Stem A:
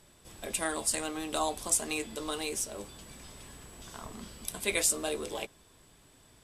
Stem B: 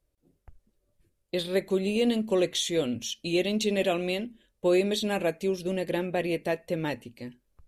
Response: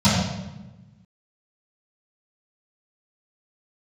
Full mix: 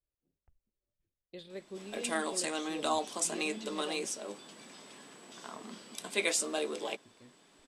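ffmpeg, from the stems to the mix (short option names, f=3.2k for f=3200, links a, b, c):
-filter_complex "[0:a]highpass=f=200:w=0.5412,highpass=f=200:w=1.3066,adelay=1500,volume=0dB[a];[1:a]volume=-18dB,asplit=3[b][c][d];[b]atrim=end=4.06,asetpts=PTS-STARTPTS,afade=t=out:st=4.056:d=0.004:c=hsin[e];[c]atrim=start=4.06:end=7.05,asetpts=PTS-STARTPTS,volume=0[f];[d]atrim=start=7.05,asetpts=PTS-STARTPTS,afade=t=in:d=0.004:c=hsin[g];[e][f][g]concat=n=3:v=0:a=1[h];[a][h]amix=inputs=2:normalize=0,lowpass=6.9k"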